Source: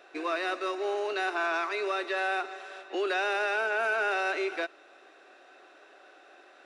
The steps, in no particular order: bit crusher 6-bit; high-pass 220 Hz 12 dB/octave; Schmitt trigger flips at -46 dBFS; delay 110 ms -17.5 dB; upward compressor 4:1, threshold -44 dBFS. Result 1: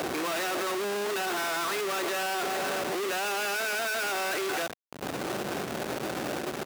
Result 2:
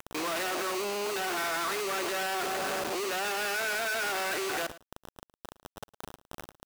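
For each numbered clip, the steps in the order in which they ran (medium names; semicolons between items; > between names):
upward compressor > Schmitt trigger > delay > bit crusher > high-pass; Schmitt trigger > upward compressor > high-pass > bit crusher > delay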